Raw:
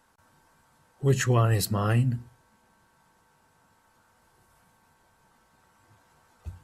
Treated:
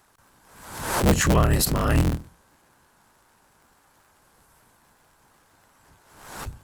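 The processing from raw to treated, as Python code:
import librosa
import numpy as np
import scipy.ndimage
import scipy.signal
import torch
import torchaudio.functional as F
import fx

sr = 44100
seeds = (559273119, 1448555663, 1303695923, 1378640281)

y = fx.cycle_switch(x, sr, every=3, mode='inverted')
y = fx.high_shelf(y, sr, hz=6200.0, db=5.5)
y = fx.pre_swell(y, sr, db_per_s=64.0)
y = y * librosa.db_to_amplitude(3.0)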